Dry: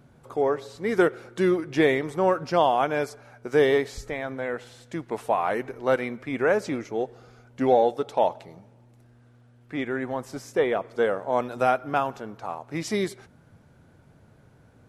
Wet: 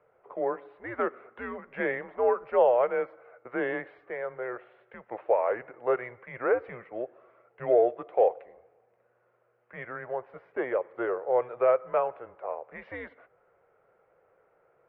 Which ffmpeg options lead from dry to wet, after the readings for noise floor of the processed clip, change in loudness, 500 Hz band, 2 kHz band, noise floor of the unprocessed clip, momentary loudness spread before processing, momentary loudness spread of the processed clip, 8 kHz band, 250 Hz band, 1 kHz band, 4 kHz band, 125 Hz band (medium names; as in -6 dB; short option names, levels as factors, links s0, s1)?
-69 dBFS, -3.5 dB, -3.0 dB, -6.0 dB, -56 dBFS, 12 LU, 17 LU, no reading, -11.5 dB, -6.0 dB, under -20 dB, -15.0 dB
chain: -af "highpass=f=260:t=q:w=0.5412,highpass=f=260:t=q:w=1.307,lowpass=f=2500:t=q:w=0.5176,lowpass=f=2500:t=q:w=0.7071,lowpass=f=2500:t=q:w=1.932,afreqshift=-120,lowshelf=f=360:t=q:w=3:g=-10,volume=0.562"